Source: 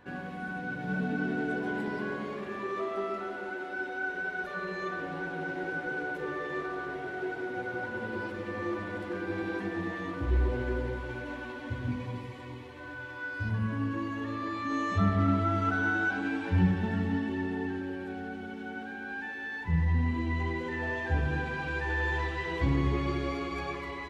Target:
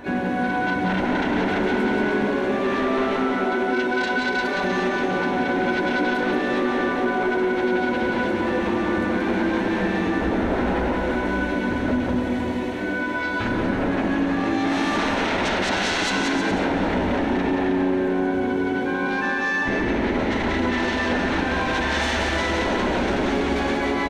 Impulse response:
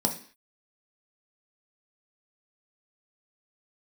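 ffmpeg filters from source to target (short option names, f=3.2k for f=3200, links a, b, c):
-filter_complex "[0:a]asplit=3[a][b][c];[b]asetrate=29433,aresample=44100,atempo=1.49831,volume=-6dB[d];[c]asetrate=66075,aresample=44100,atempo=0.66742,volume=-12dB[e];[a][d][e]amix=inputs=3:normalize=0,aeval=exprs='0.224*sin(PI/2*7.08*val(0)/0.224)':c=same,aecho=1:1:180|315|416.2|492.2|549.1:0.631|0.398|0.251|0.158|0.1,asplit=2[f][g];[1:a]atrim=start_sample=2205,asetrate=48510,aresample=44100,highshelf=f=4.5k:g=-7[h];[g][h]afir=irnorm=-1:irlink=0,volume=-14dB[i];[f][i]amix=inputs=2:normalize=0,acompressor=threshold=-12dB:ratio=2,volume=-8.5dB"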